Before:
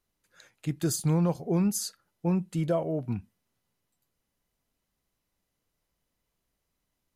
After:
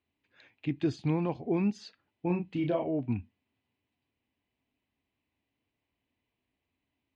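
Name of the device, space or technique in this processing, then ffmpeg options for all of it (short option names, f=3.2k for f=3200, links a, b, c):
guitar cabinet: -filter_complex "[0:a]highpass=83,equalizer=f=87:t=q:w=4:g=5,equalizer=f=170:t=q:w=4:g=-9,equalizer=f=270:t=q:w=4:g=7,equalizer=f=530:t=q:w=4:g=-6,equalizer=f=1.3k:t=q:w=4:g=-5,equalizer=f=2.5k:t=q:w=4:g=6,lowpass=f=3.5k:w=0.5412,lowpass=f=3.5k:w=1.3066,equalizer=f=1.4k:t=o:w=0.43:g=-5,asettb=1/sr,asplit=3[a][b][c];[a]atrim=end=2.264[d];[b]atrim=start=2.26:end=2.89,asetpts=PTS-STARTPTS,afade=t=in:d=0.004:c=qsin,afade=t=out:st=0.626:d=0.004:c=qsin,asplit=2[e][f];[f]adelay=34,volume=-5.5dB[g];[e][g]amix=inputs=2:normalize=0,atrim=end_sample=27783[h];[c]atrim=start=2.886[i];[d][h]acrossfade=d=0.004:c1=hsin:c2=qsin[j];[j][i]acrossfade=d=0.004:c1=qsin:c2=hsin"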